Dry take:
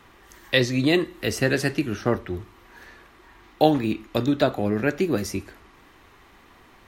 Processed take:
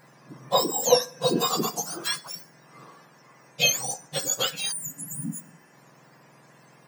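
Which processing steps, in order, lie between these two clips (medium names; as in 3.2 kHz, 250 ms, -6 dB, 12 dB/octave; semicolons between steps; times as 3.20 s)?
spectrum inverted on a logarithmic axis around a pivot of 1.4 kHz; 0.89–1.44 s: small resonant body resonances 500/1600/2600/3800 Hz, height 13 dB; 4.74–5.67 s: spectral replace 290–6800 Hz after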